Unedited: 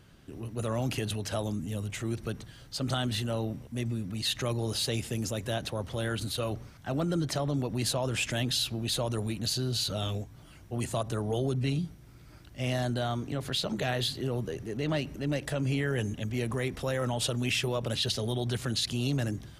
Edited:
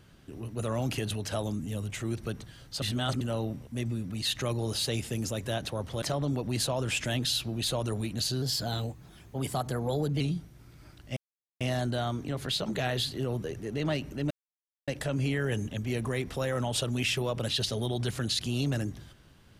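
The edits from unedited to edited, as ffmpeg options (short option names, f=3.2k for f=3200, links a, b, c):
-filter_complex "[0:a]asplit=8[a][b][c][d][e][f][g][h];[a]atrim=end=2.822[i];[b]atrim=start=2.818:end=3.212,asetpts=PTS-STARTPTS,areverse[j];[c]atrim=start=3.208:end=6.022[k];[d]atrim=start=7.278:end=9.684[l];[e]atrim=start=9.68:end=11.68,asetpts=PTS-STARTPTS,asetrate=49392,aresample=44100[m];[f]atrim=start=11.676:end=12.64,asetpts=PTS-STARTPTS,afade=t=out:st=0.96:d=0.004:c=hsin,apad=pad_dur=0.44[n];[g]atrim=start=12.64:end=15.34,asetpts=PTS-STARTPTS,afade=t=in:d=0.004:c=hsin,afade=t=out:st=2.696:d=0.004:c=hsin,apad=pad_dur=0.57[o];[h]atrim=start=15.34,asetpts=PTS-STARTPTS,afade=t=in:d=0.004:c=hsin[p];[i][j]acrossfade=d=0.004:c1=hsin:c2=hsin[q];[q][k]acrossfade=d=0.004:c1=hsin:c2=hsin[r];[r][l]acrossfade=d=0.004:c1=hsin:c2=hsin[s];[s][m]acrossfade=d=0.004:c1=hsin:c2=hsin[t];[n][o][p]concat=n=3:v=0:a=1[u];[t][u]acrossfade=d=0.004:c1=hsin:c2=hsin"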